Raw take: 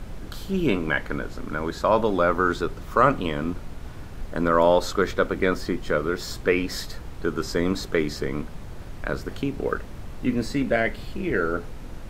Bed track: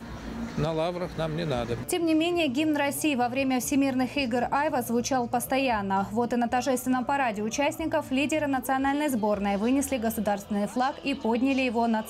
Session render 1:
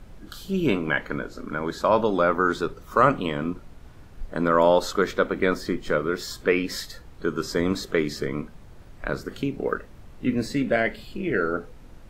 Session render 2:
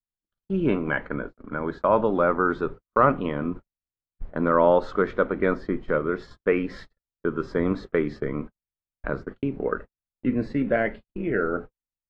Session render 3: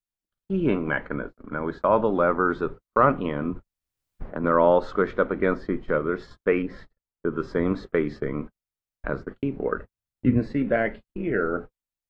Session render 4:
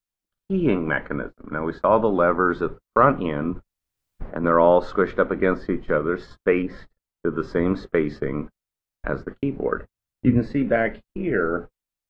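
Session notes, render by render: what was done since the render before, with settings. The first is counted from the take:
noise reduction from a noise print 9 dB
noise gate −33 dBFS, range −56 dB; low-pass filter 1,800 Hz 12 dB per octave
0:03.50–0:04.44: multiband upward and downward compressor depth 70%; 0:06.62–0:07.33: high-shelf EQ 2,200 Hz −11 dB; 0:09.76–0:10.38: parametric band 93 Hz +5.5 dB → +14.5 dB 1.6 octaves
level +2.5 dB

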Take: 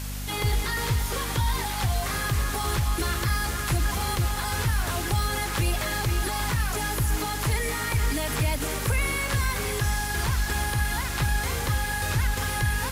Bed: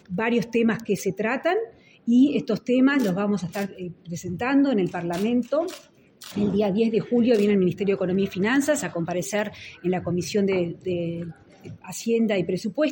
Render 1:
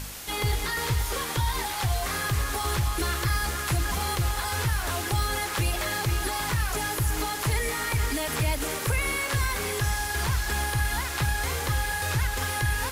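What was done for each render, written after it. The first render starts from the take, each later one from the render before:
hum removal 50 Hz, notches 7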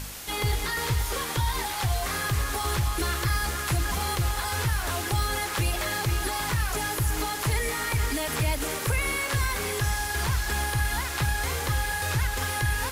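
no processing that can be heard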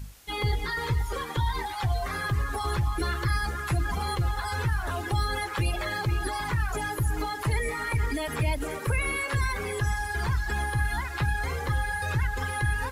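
broadband denoise 15 dB, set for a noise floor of −32 dBFS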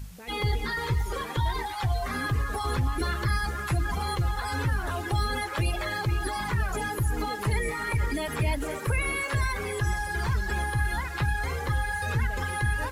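mix in bed −21.5 dB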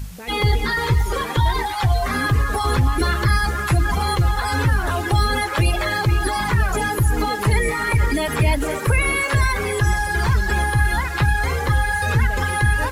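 level +9 dB

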